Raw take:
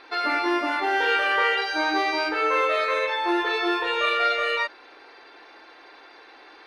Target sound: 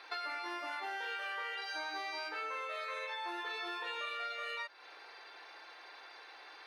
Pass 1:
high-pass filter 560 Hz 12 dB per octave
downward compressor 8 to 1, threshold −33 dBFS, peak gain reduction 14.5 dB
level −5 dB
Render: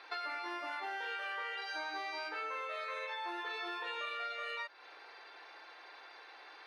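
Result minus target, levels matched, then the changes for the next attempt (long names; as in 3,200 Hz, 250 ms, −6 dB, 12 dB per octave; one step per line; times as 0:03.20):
8,000 Hz band −3.5 dB
add after high-pass filter: high-shelf EQ 5,500 Hz +7 dB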